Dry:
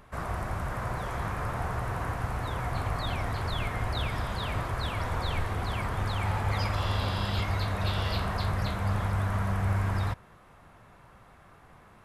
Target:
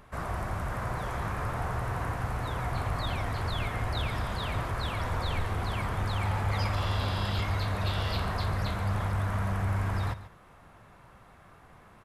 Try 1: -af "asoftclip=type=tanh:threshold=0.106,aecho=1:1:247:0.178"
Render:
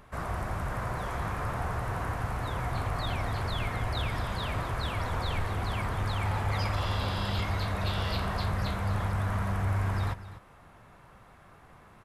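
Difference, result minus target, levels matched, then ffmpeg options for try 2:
echo 108 ms late
-af "asoftclip=type=tanh:threshold=0.106,aecho=1:1:139:0.178"

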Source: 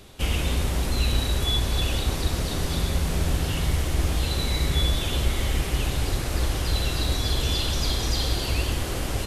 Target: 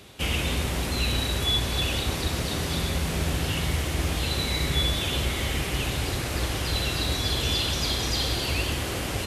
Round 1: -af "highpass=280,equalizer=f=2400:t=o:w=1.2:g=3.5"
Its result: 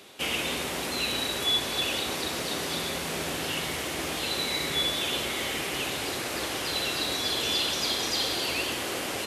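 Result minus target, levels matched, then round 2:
125 Hz band -13.5 dB
-af "highpass=72,equalizer=f=2400:t=o:w=1.2:g=3.5"

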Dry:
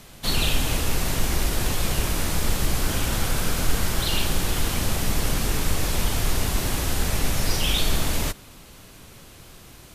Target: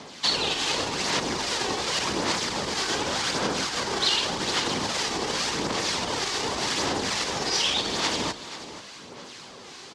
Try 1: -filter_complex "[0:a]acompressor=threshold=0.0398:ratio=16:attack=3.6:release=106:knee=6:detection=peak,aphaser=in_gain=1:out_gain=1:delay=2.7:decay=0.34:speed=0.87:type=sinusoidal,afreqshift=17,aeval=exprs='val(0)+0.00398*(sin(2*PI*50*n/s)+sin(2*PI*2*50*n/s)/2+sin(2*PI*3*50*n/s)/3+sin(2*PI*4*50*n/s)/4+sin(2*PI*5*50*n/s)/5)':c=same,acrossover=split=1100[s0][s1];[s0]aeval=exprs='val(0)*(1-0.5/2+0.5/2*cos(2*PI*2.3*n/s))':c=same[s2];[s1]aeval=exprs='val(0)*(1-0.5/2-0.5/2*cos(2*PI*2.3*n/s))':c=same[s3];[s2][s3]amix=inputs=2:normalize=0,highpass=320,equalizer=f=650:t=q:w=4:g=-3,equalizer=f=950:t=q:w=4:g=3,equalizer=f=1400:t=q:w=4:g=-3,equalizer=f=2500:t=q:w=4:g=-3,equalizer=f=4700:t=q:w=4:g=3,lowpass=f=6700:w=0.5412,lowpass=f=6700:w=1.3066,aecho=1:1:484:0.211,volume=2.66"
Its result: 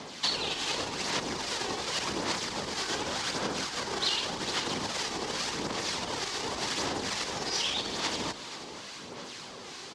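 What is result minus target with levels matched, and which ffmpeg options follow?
compression: peak gain reduction +6.5 dB
-filter_complex "[0:a]acompressor=threshold=0.0891:ratio=16:attack=3.6:release=106:knee=6:detection=peak,aphaser=in_gain=1:out_gain=1:delay=2.7:decay=0.34:speed=0.87:type=sinusoidal,afreqshift=17,aeval=exprs='val(0)+0.00398*(sin(2*PI*50*n/s)+sin(2*PI*2*50*n/s)/2+sin(2*PI*3*50*n/s)/3+sin(2*PI*4*50*n/s)/4+sin(2*PI*5*50*n/s)/5)':c=same,acrossover=split=1100[s0][s1];[s0]aeval=exprs='val(0)*(1-0.5/2+0.5/2*cos(2*PI*2.3*n/s))':c=same[s2];[s1]aeval=exprs='val(0)*(1-0.5/2-0.5/2*cos(2*PI*2.3*n/s))':c=same[s3];[s2][s3]amix=inputs=2:normalize=0,highpass=320,equalizer=f=650:t=q:w=4:g=-3,equalizer=f=950:t=q:w=4:g=3,equalizer=f=1400:t=q:w=4:g=-3,equalizer=f=2500:t=q:w=4:g=-3,equalizer=f=4700:t=q:w=4:g=3,lowpass=f=6700:w=0.5412,lowpass=f=6700:w=1.3066,aecho=1:1:484:0.211,volume=2.66"

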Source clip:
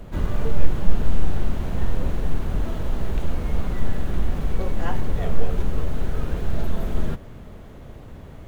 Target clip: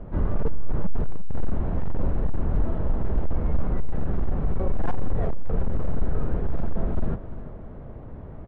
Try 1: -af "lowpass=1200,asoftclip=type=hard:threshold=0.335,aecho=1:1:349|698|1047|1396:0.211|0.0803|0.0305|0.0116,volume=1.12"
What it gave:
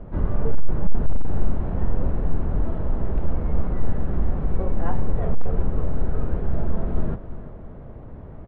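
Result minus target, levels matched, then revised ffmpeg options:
hard clipper: distortion -6 dB
-af "lowpass=1200,asoftclip=type=hard:threshold=0.168,aecho=1:1:349|698|1047|1396:0.211|0.0803|0.0305|0.0116,volume=1.12"

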